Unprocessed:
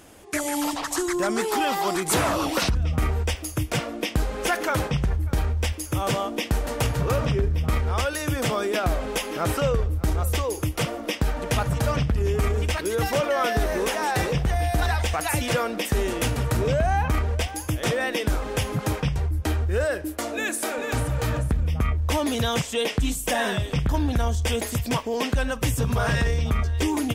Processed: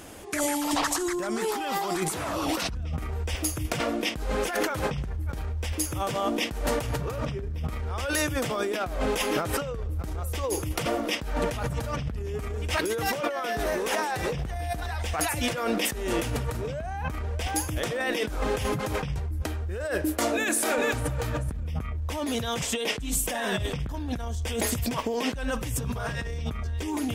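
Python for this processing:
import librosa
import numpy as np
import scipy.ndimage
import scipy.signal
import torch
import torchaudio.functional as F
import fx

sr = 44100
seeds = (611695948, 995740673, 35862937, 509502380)

y = fx.low_shelf(x, sr, hz=86.0, db=-11.5, at=(12.71, 14.09))
y = fx.over_compress(y, sr, threshold_db=-29.0, ratio=-1.0)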